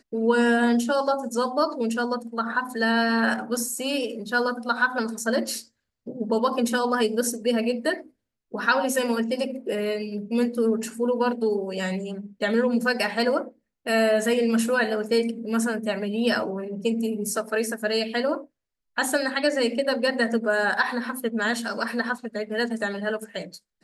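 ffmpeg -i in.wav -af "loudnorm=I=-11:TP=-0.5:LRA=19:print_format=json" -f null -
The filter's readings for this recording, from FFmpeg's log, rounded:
"input_i" : "-25.1",
"input_tp" : "-7.6",
"input_lra" : "4.6",
"input_thresh" : "-35.3",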